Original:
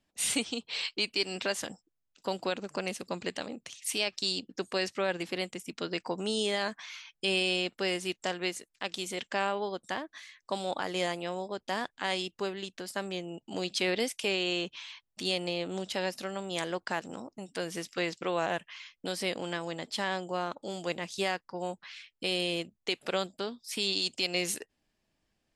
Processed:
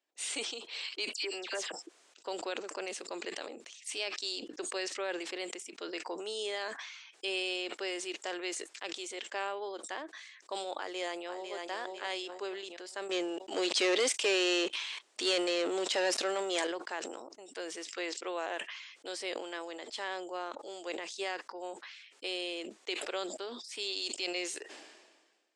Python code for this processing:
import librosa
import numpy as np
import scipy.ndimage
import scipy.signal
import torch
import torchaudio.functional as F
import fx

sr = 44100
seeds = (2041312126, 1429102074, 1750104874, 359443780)

y = fx.dispersion(x, sr, late='lows', ms=78.0, hz=2500.0, at=(1.13, 1.72))
y = fx.echo_throw(y, sr, start_s=10.77, length_s=0.8, ms=500, feedback_pct=30, wet_db=-8.0)
y = fx.leveller(y, sr, passes=3, at=(13.09, 16.67))
y = scipy.signal.sosfilt(scipy.signal.ellip(3, 1.0, 40, [350.0, 8300.0], 'bandpass', fs=sr, output='sos'), y)
y = fx.sustainer(y, sr, db_per_s=41.0)
y = y * 10.0 ** (-5.5 / 20.0)